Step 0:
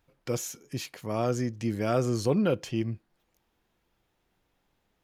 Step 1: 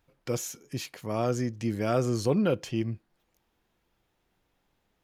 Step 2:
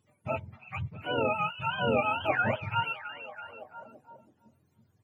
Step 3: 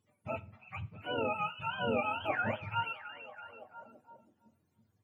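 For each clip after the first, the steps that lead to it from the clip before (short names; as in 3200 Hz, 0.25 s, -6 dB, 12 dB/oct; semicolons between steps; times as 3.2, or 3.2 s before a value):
nothing audible
spectrum mirrored in octaves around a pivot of 560 Hz; delay with a stepping band-pass 0.331 s, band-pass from 3000 Hz, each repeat -0.7 oct, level -10 dB; gain +1.5 dB
reverb, pre-delay 3 ms, DRR 13 dB; gain -5.5 dB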